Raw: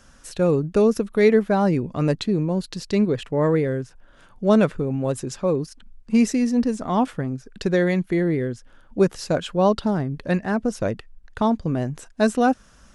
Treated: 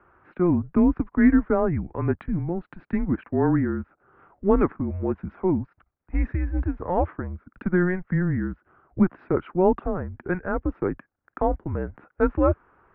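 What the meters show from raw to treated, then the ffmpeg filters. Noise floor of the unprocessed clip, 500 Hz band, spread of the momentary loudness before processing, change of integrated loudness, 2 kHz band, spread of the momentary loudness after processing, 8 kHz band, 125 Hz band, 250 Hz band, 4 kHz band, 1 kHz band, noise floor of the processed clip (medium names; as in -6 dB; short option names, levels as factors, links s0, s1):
-52 dBFS, -4.5 dB, 10 LU, -3.0 dB, -3.0 dB, 12 LU, under -40 dB, -2.0 dB, -2.0 dB, under -25 dB, -3.5 dB, -78 dBFS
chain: -af "highpass=f=270:t=q:w=0.5412,highpass=f=270:t=q:w=1.307,lowpass=f=2100:t=q:w=0.5176,lowpass=f=2100:t=q:w=0.7071,lowpass=f=2100:t=q:w=1.932,afreqshift=-180"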